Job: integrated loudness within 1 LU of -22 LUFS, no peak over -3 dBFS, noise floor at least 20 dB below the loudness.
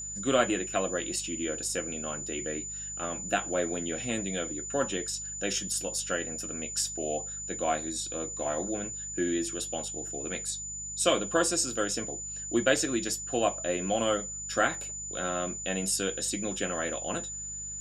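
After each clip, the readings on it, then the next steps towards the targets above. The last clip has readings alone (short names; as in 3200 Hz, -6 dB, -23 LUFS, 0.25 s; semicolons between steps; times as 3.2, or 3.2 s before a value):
hum 50 Hz; harmonics up to 200 Hz; hum level -47 dBFS; steady tone 7000 Hz; tone level -36 dBFS; loudness -30.5 LUFS; peak -9.5 dBFS; loudness target -22.0 LUFS
-> de-hum 50 Hz, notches 4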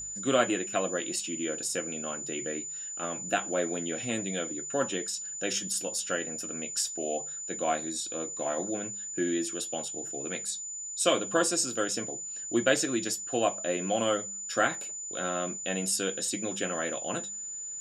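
hum none; steady tone 7000 Hz; tone level -36 dBFS
-> notch 7000 Hz, Q 30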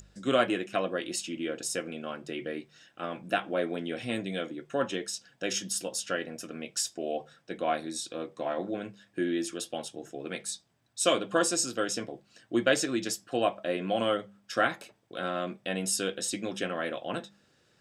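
steady tone none; loudness -31.5 LUFS; peak -9.5 dBFS; loudness target -22.0 LUFS
-> gain +9.5 dB; limiter -3 dBFS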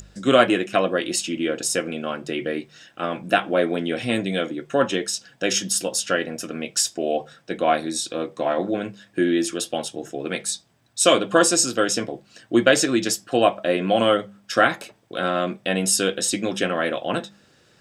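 loudness -22.5 LUFS; peak -3.0 dBFS; noise floor -58 dBFS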